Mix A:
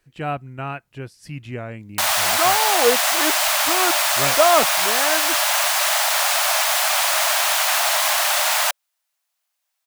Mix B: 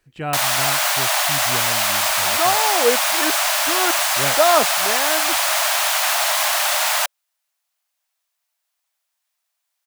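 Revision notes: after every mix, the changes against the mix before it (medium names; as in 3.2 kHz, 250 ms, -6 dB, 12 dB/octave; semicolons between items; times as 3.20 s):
background: entry -1.65 s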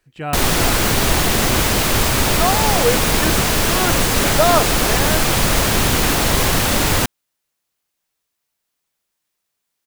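background: remove brick-wall FIR high-pass 570 Hz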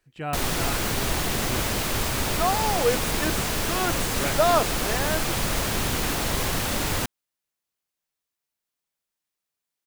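speech -5.0 dB; background -9.5 dB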